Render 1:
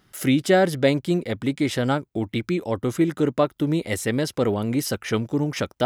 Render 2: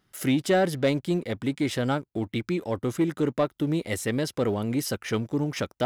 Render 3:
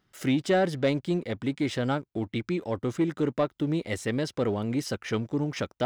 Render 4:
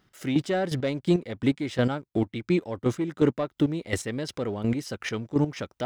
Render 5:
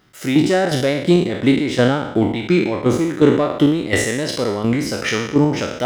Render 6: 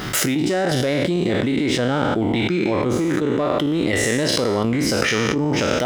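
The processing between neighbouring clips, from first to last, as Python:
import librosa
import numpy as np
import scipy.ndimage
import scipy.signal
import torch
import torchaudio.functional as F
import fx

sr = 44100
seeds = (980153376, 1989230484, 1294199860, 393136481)

y1 = fx.leveller(x, sr, passes=1)
y1 = y1 * librosa.db_to_amplitude(-7.0)
y2 = fx.peak_eq(y1, sr, hz=12000.0, db=-14.0, octaves=0.65)
y2 = y2 * librosa.db_to_amplitude(-1.5)
y3 = fx.chopper(y2, sr, hz=2.8, depth_pct=65, duty_pct=25)
y3 = y3 * librosa.db_to_amplitude(6.0)
y4 = fx.spec_trails(y3, sr, decay_s=0.81)
y4 = fx.low_shelf(y4, sr, hz=120.0, db=-5.5)
y4 = y4 * librosa.db_to_amplitude(8.5)
y5 = fx.env_flatten(y4, sr, amount_pct=100)
y5 = y5 * librosa.db_to_amplitude(-11.5)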